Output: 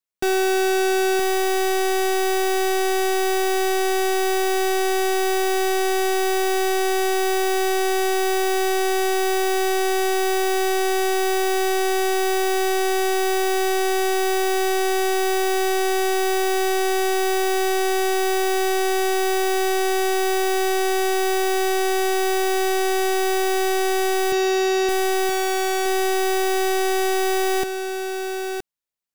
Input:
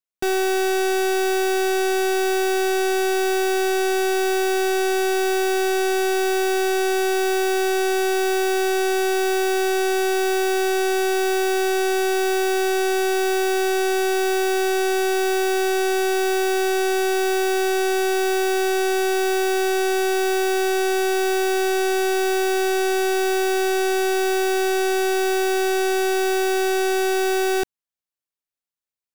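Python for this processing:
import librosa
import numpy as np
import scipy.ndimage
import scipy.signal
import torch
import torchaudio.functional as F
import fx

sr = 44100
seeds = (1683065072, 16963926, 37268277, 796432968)

y = fx.cheby1_bandpass(x, sr, low_hz=110.0, high_hz=7000.0, order=4, at=(24.32, 24.89))
y = y + 10.0 ** (-7.5 / 20.0) * np.pad(y, (int(970 * sr / 1000.0), 0))[:len(y)]
y = y * librosa.db_to_amplitude(1.0)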